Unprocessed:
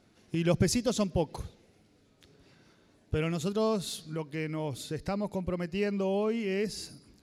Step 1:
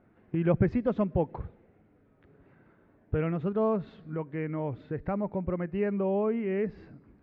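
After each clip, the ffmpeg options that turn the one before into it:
-af "lowpass=f=1900:w=0.5412,lowpass=f=1900:w=1.3066,volume=1.19"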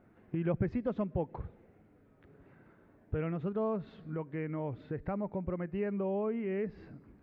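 -af "acompressor=threshold=0.01:ratio=1.5"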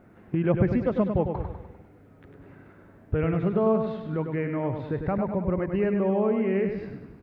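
-af "aecho=1:1:100|200|300|400|500|600:0.473|0.237|0.118|0.0591|0.0296|0.0148,volume=2.66"

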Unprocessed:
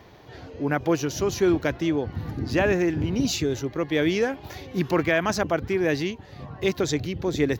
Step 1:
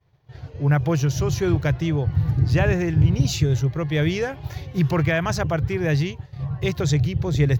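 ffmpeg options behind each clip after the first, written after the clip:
-af "agate=range=0.0224:threshold=0.0141:ratio=3:detection=peak,lowshelf=f=180:t=q:w=3:g=8.5"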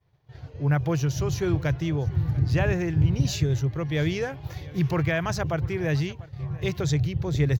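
-af "aecho=1:1:694:0.0891,volume=0.631"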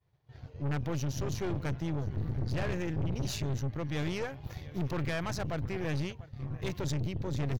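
-af "aeval=exprs='(tanh(22.4*val(0)+0.7)-tanh(0.7))/22.4':c=same,volume=0.75"

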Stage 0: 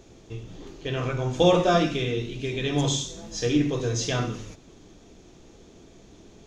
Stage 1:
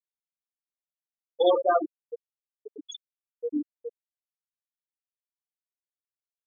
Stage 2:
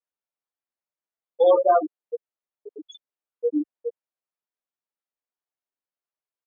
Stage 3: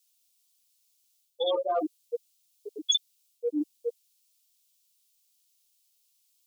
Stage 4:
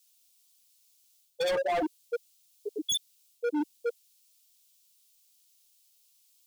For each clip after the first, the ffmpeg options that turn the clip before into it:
-af "highpass=f=1100:p=1,afftfilt=real='re*gte(hypot(re,im),0.2)':imag='im*gte(hypot(re,im),0.2)':win_size=1024:overlap=0.75,equalizer=f=3800:w=1.5:g=-7.5,volume=2.11"
-filter_complex "[0:a]asplit=2[s0][s1];[s1]alimiter=limit=0.1:level=0:latency=1:release=124,volume=0.891[s2];[s0][s2]amix=inputs=2:normalize=0,bandpass=f=680:t=q:w=0.64:csg=0,asplit=2[s3][s4];[s4]adelay=8.1,afreqshift=2.3[s5];[s3][s5]amix=inputs=2:normalize=1,volume=1.5"
-af "areverse,acompressor=threshold=0.0501:ratio=6,areverse,aexciter=amount=13:drive=6:freq=2600"
-af "asoftclip=type=hard:threshold=0.0299,volume=1.68"

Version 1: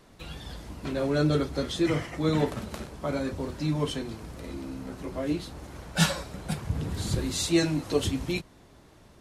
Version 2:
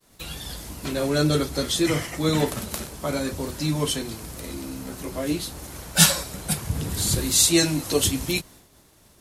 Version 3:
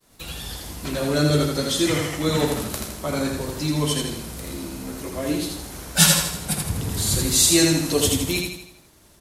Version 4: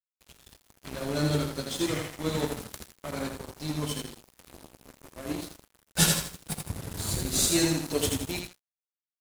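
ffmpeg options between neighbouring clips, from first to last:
-af "aemphasis=mode=production:type=75fm,agate=range=0.0224:threshold=0.00447:ratio=3:detection=peak,volume=1.5"
-af "aecho=1:1:81|162|243|324|405|486:0.668|0.314|0.148|0.0694|0.0326|0.0153"
-filter_complex "[0:a]aeval=exprs='sgn(val(0))*max(abs(val(0))-0.0376,0)':c=same,asplit=2[s0][s1];[s1]acrusher=samples=26:mix=1:aa=0.000001:lfo=1:lforange=41.6:lforate=0.84,volume=0.316[s2];[s0][s2]amix=inputs=2:normalize=0,volume=0.447"

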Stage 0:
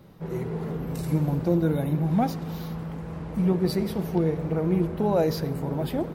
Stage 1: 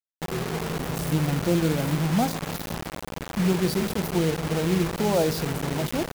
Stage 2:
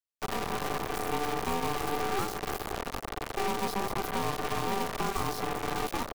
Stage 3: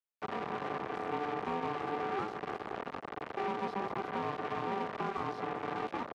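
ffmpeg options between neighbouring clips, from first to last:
-af "acrusher=bits=4:mix=0:aa=0.000001"
-filter_complex "[0:a]acrossover=split=120|310|2100[s0][s1][s2][s3];[s0]acompressor=threshold=0.01:ratio=4[s4];[s1]acompressor=threshold=0.02:ratio=4[s5];[s2]acompressor=threshold=0.02:ratio=4[s6];[s3]acompressor=threshold=0.0126:ratio=4[s7];[s4][s5][s6][s7]amix=inputs=4:normalize=0,aeval=exprs='val(0)*sin(2*PI*590*n/s)':c=same,aeval=exprs='0.133*(cos(1*acos(clip(val(0)/0.133,-1,1)))-cos(1*PI/2))+0.0237*(cos(8*acos(clip(val(0)/0.133,-1,1)))-cos(8*PI/2))':c=same"
-af "highpass=150,lowpass=2300,volume=0.668"

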